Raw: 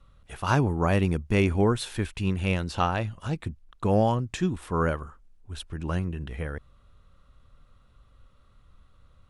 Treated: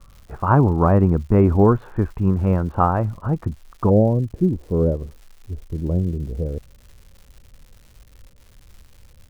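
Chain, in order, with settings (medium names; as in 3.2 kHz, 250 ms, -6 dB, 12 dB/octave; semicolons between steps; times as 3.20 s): Chebyshev low-pass 1.2 kHz, order 3, from 3.89 s 520 Hz; crackle 260 per s -48 dBFS; trim +8.5 dB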